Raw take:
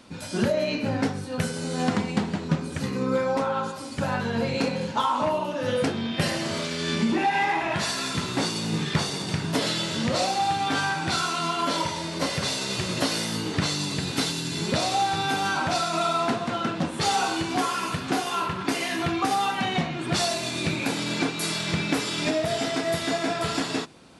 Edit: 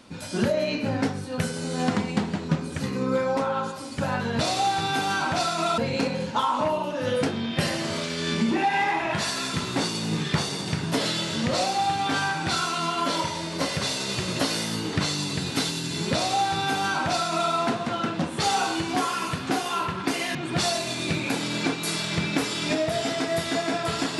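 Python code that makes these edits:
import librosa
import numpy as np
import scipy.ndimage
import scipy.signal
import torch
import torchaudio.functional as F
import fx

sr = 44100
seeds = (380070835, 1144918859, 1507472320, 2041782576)

y = fx.edit(x, sr, fx.duplicate(start_s=14.74, length_s=1.39, to_s=4.39),
    fx.cut(start_s=18.96, length_s=0.95), tone=tone)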